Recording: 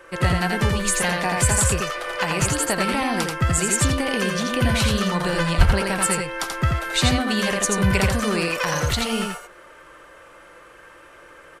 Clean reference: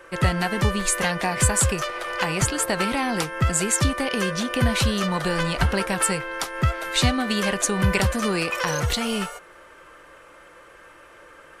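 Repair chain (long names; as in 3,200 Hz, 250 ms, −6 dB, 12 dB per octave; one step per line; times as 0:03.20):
0:05.57–0:05.69: high-pass filter 140 Hz 24 dB per octave
echo removal 84 ms −3.5 dB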